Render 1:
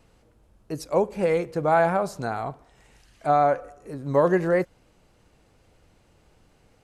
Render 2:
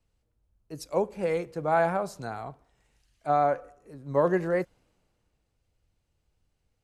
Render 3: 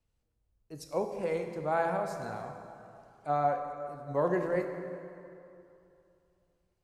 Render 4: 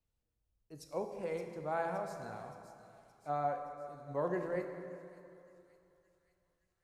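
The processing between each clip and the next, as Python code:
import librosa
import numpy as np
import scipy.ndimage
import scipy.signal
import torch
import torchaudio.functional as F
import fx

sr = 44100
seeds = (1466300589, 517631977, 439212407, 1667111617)

y1 = fx.band_widen(x, sr, depth_pct=40)
y1 = y1 * librosa.db_to_amplitude(-5.5)
y2 = fx.rev_plate(y1, sr, seeds[0], rt60_s=2.8, hf_ratio=0.65, predelay_ms=0, drr_db=5.0)
y2 = y2 * librosa.db_to_amplitude(-5.5)
y3 = fx.echo_wet_highpass(y2, sr, ms=570, feedback_pct=59, hz=4500.0, wet_db=-9)
y3 = y3 * librosa.db_to_amplitude(-6.5)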